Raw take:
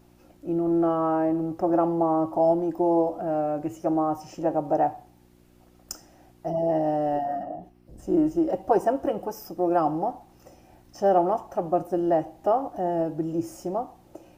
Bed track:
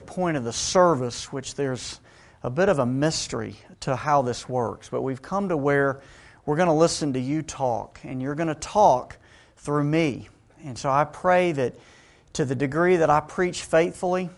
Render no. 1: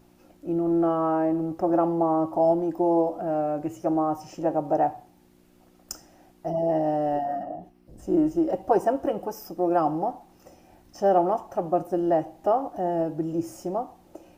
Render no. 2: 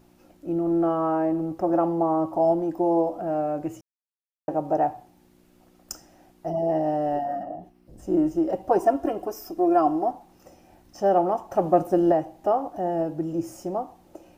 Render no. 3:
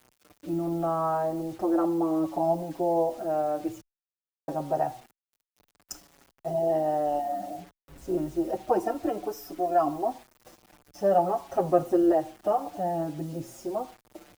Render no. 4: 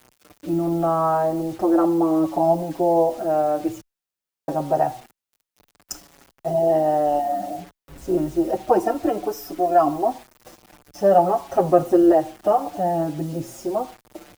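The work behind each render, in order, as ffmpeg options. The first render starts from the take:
ffmpeg -i in.wav -af "bandreject=frequency=60:width_type=h:width=4,bandreject=frequency=120:width_type=h:width=4" out.wav
ffmpeg -i in.wav -filter_complex "[0:a]asettb=1/sr,asplit=3[link_01][link_02][link_03];[link_01]atrim=end=8.784[link_04];[link_02]atrim=start=8.78:end=10.11,asetpts=PTS-STARTPTS,afade=type=in:duration=0.004:curve=qsin,afade=type=out:start_time=1.326:duration=0.004:curve=qsin,aecho=1:1:2.9:0.65,atrim=end_sample=58653[link_05];[link_03]atrim=start=10.106[link_06];[link_04][link_05]acrossfade=duration=0.004:curve1=hsin:curve2=qsin[link_07];[link_07][link_06]acrossfade=duration=0.004:curve1=qsin:curve2=hsin,asettb=1/sr,asplit=3[link_08][link_09][link_10];[link_08]atrim=end=11.514[link_11];[link_09]atrim=start=11.51:end=12.12,asetpts=PTS-STARTPTS,afade=type=in:duration=0.004:curve=qsin,afade=type=out:start_time=0.606:duration=0.004:curve=qsin,acontrast=26[link_12];[link_10]atrim=start=12.116[link_13];[link_11][link_12]acrossfade=duration=0.004:curve1=hsin:curve2=qsin[link_14];[link_14][link_13]acrossfade=duration=0.004:curve1=qsin:curve2=hsin,asplit=3[link_15][link_16][link_17];[link_15]atrim=end=3.81,asetpts=PTS-STARTPTS,afade=type=out:start_time=3.806:duration=0.004:curve=hsin[link_18];[link_16]atrim=start=3.81:end=4.48,asetpts=PTS-STARTPTS,volume=0[link_19];[link_17]atrim=start=4.48,asetpts=PTS-STARTPTS,afade=type=in:duration=0.004:curve=hsin[link_20];[link_18][link_19][link_20]concat=n=3:v=0:a=1" out.wav
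ffmpeg -i in.wav -filter_complex "[0:a]acrusher=bits=7:mix=0:aa=0.000001,asplit=2[link_01][link_02];[link_02]adelay=6.1,afreqshift=-0.57[link_03];[link_01][link_03]amix=inputs=2:normalize=1" out.wav
ffmpeg -i in.wav -af "volume=7dB,alimiter=limit=-3dB:level=0:latency=1" out.wav

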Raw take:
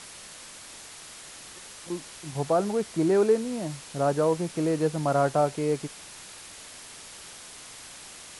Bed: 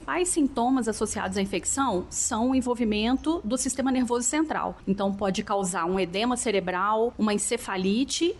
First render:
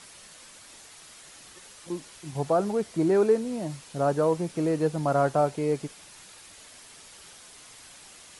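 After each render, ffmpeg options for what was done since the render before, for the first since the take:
ffmpeg -i in.wav -af "afftdn=noise_reduction=6:noise_floor=-45" out.wav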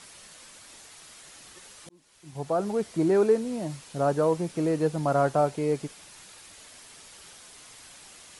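ffmpeg -i in.wav -filter_complex "[0:a]asplit=2[link_01][link_02];[link_01]atrim=end=1.89,asetpts=PTS-STARTPTS,afade=type=out:start_time=1.886:duration=0.004:curve=hsin[link_03];[link_02]atrim=start=1.89,asetpts=PTS-STARTPTS,afade=type=in:duration=0.93[link_04];[link_03][link_04]concat=n=2:v=0:a=1" out.wav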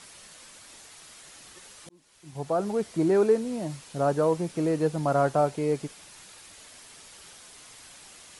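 ffmpeg -i in.wav -af anull out.wav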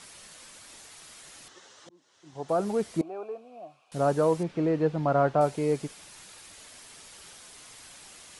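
ffmpeg -i in.wav -filter_complex "[0:a]asettb=1/sr,asplit=3[link_01][link_02][link_03];[link_01]atrim=end=1.484[link_04];[link_02]atrim=start=1.48:end=2.49,asetpts=PTS-STARTPTS,afade=type=in:duration=0.004:curve=qsin,afade=type=out:start_time=1.006:duration=0.004:curve=qsin,highpass=140,equalizer=frequency=150:width_type=q:width=4:gain=-7,equalizer=frequency=210:width_type=q:width=4:gain=-7,equalizer=frequency=2400:width_type=q:width=4:gain=-9,equalizer=frequency=4600:width_type=q:width=4:gain=-5,lowpass=frequency=6400:width=0.5412,lowpass=frequency=6400:width=1.3066[link_05];[link_03]atrim=start=2.486[link_06];[link_04][link_05]acrossfade=duration=0.004:curve1=hsin:curve2=qsin[link_07];[link_07][link_06]acrossfade=duration=0.004:curve1=qsin:curve2=hsin,asettb=1/sr,asplit=3[link_08][link_09][link_10];[link_08]atrim=end=3.014[link_11];[link_09]atrim=start=3.01:end=3.92,asetpts=PTS-STARTPTS,afade=type=in:duration=0.004:curve=qsin,afade=type=out:start_time=0.906:duration=0.004:curve=qsin,asplit=3[link_12][link_13][link_14];[link_12]bandpass=frequency=730:width_type=q:width=8,volume=0dB[link_15];[link_13]bandpass=frequency=1090:width_type=q:width=8,volume=-6dB[link_16];[link_14]bandpass=frequency=2440:width_type=q:width=8,volume=-9dB[link_17];[link_15][link_16][link_17]amix=inputs=3:normalize=0[link_18];[link_10]atrim=start=3.916[link_19];[link_11][link_18]acrossfade=duration=0.004:curve1=hsin:curve2=qsin[link_20];[link_20][link_19]acrossfade=duration=0.004:curve1=qsin:curve2=hsin,asettb=1/sr,asplit=3[link_21][link_22][link_23];[link_21]atrim=end=4.434[link_24];[link_22]atrim=start=4.43:end=5.41,asetpts=PTS-STARTPTS,afade=type=in:duration=0.004:curve=qsin,afade=type=out:start_time=0.976:duration=0.004:curve=qsin,lowpass=3200[link_25];[link_23]atrim=start=5.406[link_26];[link_24][link_25]acrossfade=duration=0.004:curve1=hsin:curve2=qsin[link_27];[link_27][link_26]acrossfade=duration=0.004:curve1=qsin:curve2=hsin" out.wav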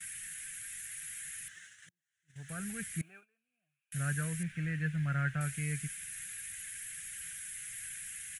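ffmpeg -i in.wav -af "firequalizer=gain_entry='entry(150,0);entry(320,-26);entry(970,-30);entry(1600,8);entry(2600,2);entry(4600,-13);entry(6700,1);entry(11000,12)':delay=0.05:min_phase=1,agate=range=-22dB:threshold=-53dB:ratio=16:detection=peak" out.wav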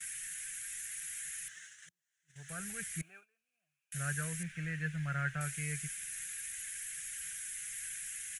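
ffmpeg -i in.wav -af "equalizer=frequency=100:width_type=o:width=0.67:gain=-9,equalizer=frequency=250:width_type=o:width=0.67:gain=-11,equalizer=frequency=6300:width_type=o:width=0.67:gain=5" out.wav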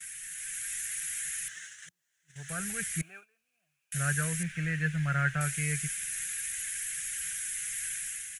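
ffmpeg -i in.wav -af "dynaudnorm=framelen=180:gausssize=5:maxgain=7dB" out.wav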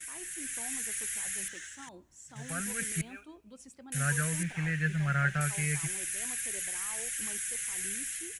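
ffmpeg -i in.wav -i bed.wav -filter_complex "[1:a]volume=-25dB[link_01];[0:a][link_01]amix=inputs=2:normalize=0" out.wav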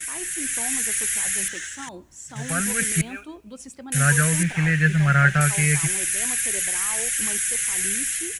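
ffmpeg -i in.wav -af "volume=11.5dB" out.wav

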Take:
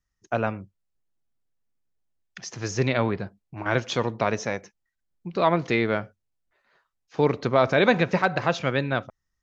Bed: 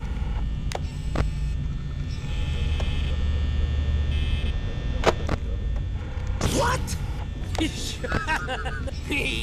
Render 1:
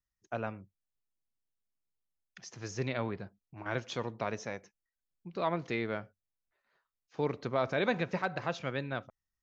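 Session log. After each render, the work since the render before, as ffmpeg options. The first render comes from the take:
ffmpeg -i in.wav -af "volume=-11dB" out.wav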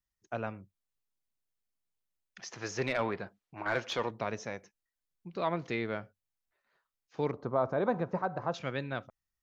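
ffmpeg -i in.wav -filter_complex "[0:a]asettb=1/sr,asplit=3[link_01][link_02][link_03];[link_01]atrim=end=2.394[link_04];[link_02]atrim=start=2.39:end=4.11,asetpts=PTS-STARTPTS,afade=type=in:duration=0.004:curve=qsin,afade=type=out:start_time=1.716:duration=0.004:curve=qsin,asplit=2[link_05][link_06];[link_06]highpass=frequency=720:poles=1,volume=15dB,asoftclip=type=tanh:threshold=-18.5dB[link_07];[link_05][link_07]amix=inputs=2:normalize=0,lowpass=frequency=2800:poles=1,volume=-6dB[link_08];[link_03]atrim=start=4.106[link_09];[link_04][link_08]acrossfade=duration=0.004:curve1=hsin:curve2=qsin[link_10];[link_10][link_09]acrossfade=duration=0.004:curve1=qsin:curve2=hsin,asettb=1/sr,asplit=3[link_11][link_12][link_13];[link_11]atrim=end=7.314[link_14];[link_12]atrim=start=7.31:end=8.54,asetpts=PTS-STARTPTS,afade=type=in:duration=0.004:curve=qsin,afade=type=out:start_time=1.226:duration=0.004:curve=qsin,highshelf=frequency=1600:width_type=q:width=1.5:gain=-13.5[link_15];[link_13]atrim=start=8.536[link_16];[link_14][link_15]acrossfade=duration=0.004:curve1=hsin:curve2=qsin[link_17];[link_17][link_16]acrossfade=duration=0.004:curve1=qsin:curve2=hsin" out.wav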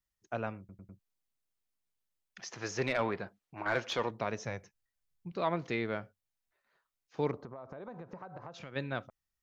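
ffmpeg -i in.wav -filter_complex "[0:a]asettb=1/sr,asplit=3[link_01][link_02][link_03];[link_01]atrim=end=4.454[link_04];[link_02]atrim=start=4.45:end=5.32,asetpts=PTS-STARTPTS,afade=type=in:duration=0.004:curve=qsin,afade=type=out:start_time=0.866:duration=0.004:curve=qsin,lowshelf=frequency=170:width_type=q:width=1.5:gain=7[link_05];[link_03]atrim=start=5.316[link_06];[link_04][link_05]acrossfade=duration=0.004:curve1=hsin:curve2=qsin[link_07];[link_07][link_06]acrossfade=duration=0.004:curve1=qsin:curve2=hsin,asplit=3[link_08][link_09][link_10];[link_08]afade=type=out:start_time=7.43:duration=0.02[link_11];[link_09]acompressor=threshold=-41dB:ratio=16:attack=3.2:release=140:knee=1:detection=peak,afade=type=in:start_time=7.43:duration=0.02,afade=type=out:start_time=8.75:duration=0.02[link_12];[link_10]afade=type=in:start_time=8.75:duration=0.02[link_13];[link_11][link_12][link_13]amix=inputs=3:normalize=0,asplit=5[link_14][link_15][link_16][link_17][link_18];[link_14]atrim=end=0.692[link_19];[link_15]atrim=start=0.588:end=0.692[link_20];[link_16]atrim=start=0.588:end=0.692[link_21];[link_17]atrim=start=0.588:end=0.692[link_22];[link_18]atrim=start=0.988[link_23];[link_19][link_20]acrossfade=duration=0.004:curve1=hsin:curve2=hsin[link_24];[link_24][link_21]acrossfade=duration=0.004:curve1=hsin:curve2=hsin[link_25];[link_25][link_22]acrossfade=duration=0.004:curve1=hsin:curve2=hsin[link_26];[link_26][link_23]acrossfade=duration=0.004:curve1=hsin:curve2=hsin" out.wav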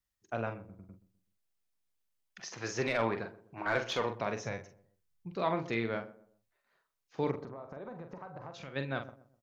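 ffmpeg -i in.wav -filter_complex "[0:a]asplit=2[link_01][link_02];[link_02]adelay=44,volume=-7.5dB[link_03];[link_01][link_03]amix=inputs=2:normalize=0,asplit=2[link_04][link_05];[link_05]adelay=126,lowpass=frequency=910:poles=1,volume=-16dB,asplit=2[link_06][link_07];[link_07]adelay=126,lowpass=frequency=910:poles=1,volume=0.38,asplit=2[link_08][link_09];[link_09]adelay=126,lowpass=frequency=910:poles=1,volume=0.38[link_10];[link_04][link_06][link_08][link_10]amix=inputs=4:normalize=0" out.wav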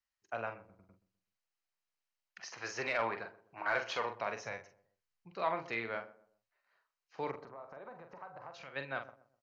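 ffmpeg -i in.wav -filter_complex "[0:a]acrossover=split=550 6100:gain=0.224 1 0.178[link_01][link_02][link_03];[link_01][link_02][link_03]amix=inputs=3:normalize=0,bandreject=frequency=3500:width=7.3" out.wav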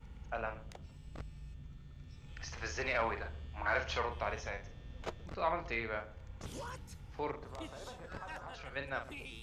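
ffmpeg -i in.wav -i bed.wav -filter_complex "[1:a]volume=-22dB[link_01];[0:a][link_01]amix=inputs=2:normalize=0" out.wav

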